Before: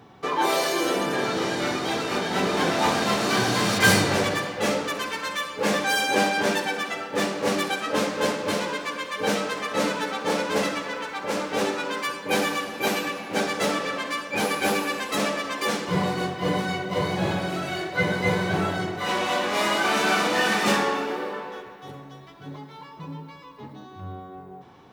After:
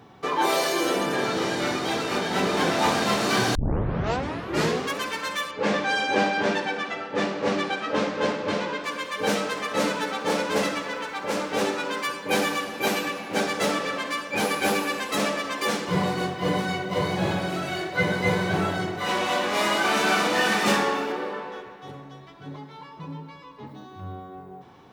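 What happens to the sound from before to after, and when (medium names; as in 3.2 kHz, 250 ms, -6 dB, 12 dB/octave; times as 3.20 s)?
3.55 s: tape start 1.43 s
5.51–8.84 s: distance through air 120 m
21.12–23.67 s: treble shelf 11 kHz -12 dB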